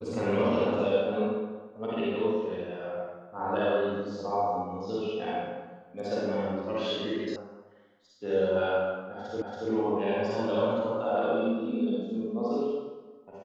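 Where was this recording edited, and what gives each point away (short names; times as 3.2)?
7.36 sound cut off
9.42 repeat of the last 0.28 s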